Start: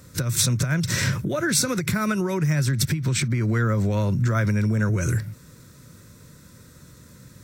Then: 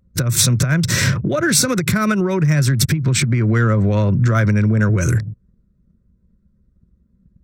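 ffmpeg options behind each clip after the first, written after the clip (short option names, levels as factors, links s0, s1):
-af "anlmdn=15.8,bandreject=f=890:w=12,acontrast=78"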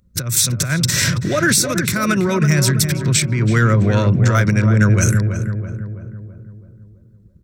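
-filter_complex "[0:a]highshelf=f=2300:g=10,alimiter=limit=0.562:level=0:latency=1:release=345,asplit=2[s0][s1];[s1]adelay=330,lowpass=f=1400:p=1,volume=0.473,asplit=2[s2][s3];[s3]adelay=330,lowpass=f=1400:p=1,volume=0.55,asplit=2[s4][s5];[s5]adelay=330,lowpass=f=1400:p=1,volume=0.55,asplit=2[s6][s7];[s7]adelay=330,lowpass=f=1400:p=1,volume=0.55,asplit=2[s8][s9];[s9]adelay=330,lowpass=f=1400:p=1,volume=0.55,asplit=2[s10][s11];[s11]adelay=330,lowpass=f=1400:p=1,volume=0.55,asplit=2[s12][s13];[s13]adelay=330,lowpass=f=1400:p=1,volume=0.55[s14];[s2][s4][s6][s8][s10][s12][s14]amix=inputs=7:normalize=0[s15];[s0][s15]amix=inputs=2:normalize=0"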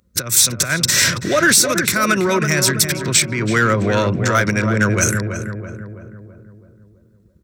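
-filter_complex "[0:a]highpass=76,equalizer=f=130:t=o:w=1.6:g=-12,asplit=2[s0][s1];[s1]asoftclip=type=hard:threshold=0.141,volume=0.501[s2];[s0][s2]amix=inputs=2:normalize=0,volume=1.12"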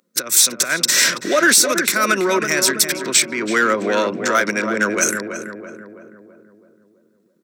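-af "highpass=f=240:w=0.5412,highpass=f=240:w=1.3066"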